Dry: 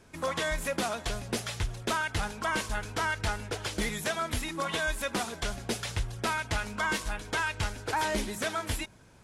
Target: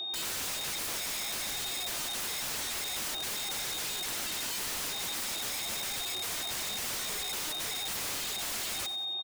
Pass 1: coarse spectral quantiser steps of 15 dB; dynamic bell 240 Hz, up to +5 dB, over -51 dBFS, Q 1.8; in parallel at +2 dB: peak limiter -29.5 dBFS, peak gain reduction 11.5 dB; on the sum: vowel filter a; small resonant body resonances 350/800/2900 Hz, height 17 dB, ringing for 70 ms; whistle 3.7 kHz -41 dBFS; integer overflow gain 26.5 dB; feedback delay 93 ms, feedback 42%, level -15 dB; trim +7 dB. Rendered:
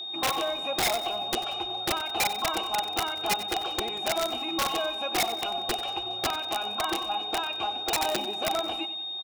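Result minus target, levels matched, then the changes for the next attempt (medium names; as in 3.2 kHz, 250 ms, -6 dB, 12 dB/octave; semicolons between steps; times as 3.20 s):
integer overflow: distortion -18 dB
change: integer overflow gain 37.5 dB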